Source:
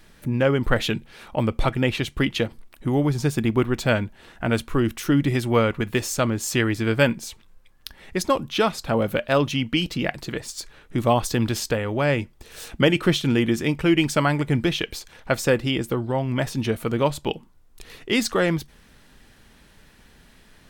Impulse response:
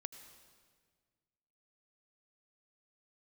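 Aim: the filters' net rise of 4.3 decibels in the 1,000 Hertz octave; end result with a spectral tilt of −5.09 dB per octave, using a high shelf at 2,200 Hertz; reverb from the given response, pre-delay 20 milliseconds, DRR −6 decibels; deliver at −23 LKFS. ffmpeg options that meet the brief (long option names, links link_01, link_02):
-filter_complex "[0:a]equalizer=frequency=1000:width_type=o:gain=6.5,highshelf=frequency=2200:gain=-4,asplit=2[link_01][link_02];[1:a]atrim=start_sample=2205,adelay=20[link_03];[link_02][link_03]afir=irnorm=-1:irlink=0,volume=9.5dB[link_04];[link_01][link_04]amix=inputs=2:normalize=0,volume=-7dB"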